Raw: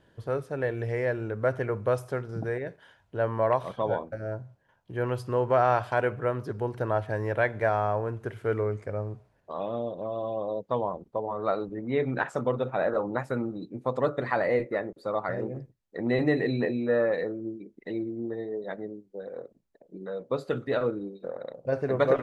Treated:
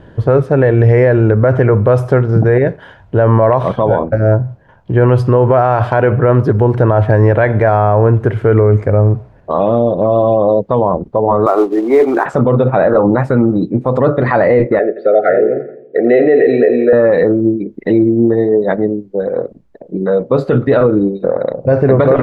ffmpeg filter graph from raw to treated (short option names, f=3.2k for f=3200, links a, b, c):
-filter_complex "[0:a]asettb=1/sr,asplit=3[a][b][c];[a]atrim=end=11.464[d];[b]atrim=start=11.46:end=12.26,asetpts=PTS-STARTPTS,afade=t=in:d=0.004:c=qsin,afade=t=out:st=0.796:d=0.004:c=qsin,highpass=f=340:w=0.5412,highpass=f=340:w=1.3066,equalizer=f=360:t=q:w=4:g=8,equalizer=f=520:t=q:w=4:g=-7,equalizer=f=760:t=q:w=4:g=5,equalizer=f=1.1k:t=q:w=4:g=7,equalizer=f=1.7k:t=q:w=4:g=-3,equalizer=f=2.9k:t=q:w=4:g=-9,lowpass=f=3.4k:w=0.5412,lowpass=f=3.4k:w=1.3066,acrusher=bits=5:mode=log:mix=0:aa=0.000001[e];[c]atrim=start=12.256[f];[d][e]acrossfade=d=0.004:c1=hsin:c2=qsin[g];[g][f]acrossfade=d=0.004:c1=qsin:c2=hsin,asettb=1/sr,asplit=3[h][i][j];[h]atrim=end=14.794[k];[i]atrim=start=14.79:end=16.93,asetpts=PTS-STARTPTS,afade=t=in:d=0.004:c=qsin,afade=t=out:st=2.136:d=0.004:c=qsin,asuperstop=centerf=980:order=20:qfactor=1.9,highpass=430,equalizer=f=430:t=q:w=4:g=9,equalizer=f=700:t=q:w=4:g=4,equalizer=f=1.1k:t=q:w=4:g=-5,lowpass=f=3.3k:w=0.5412,lowpass=f=3.3k:w=1.3066,aecho=1:1:85|170|255|340|425:0.158|0.0903|0.0515|0.0294|0.0167,atrim=end_sample=94374[l];[j]atrim=start=16.926[m];[k][l]acrossfade=d=0.004:c1=hsin:c2=qsin[n];[n][m]acrossfade=d=0.004:c1=qsin:c2=hsin,lowpass=f=1.3k:p=1,lowshelf=f=160:g=5.5,alimiter=level_in=23dB:limit=-1dB:release=50:level=0:latency=1,volume=-1dB"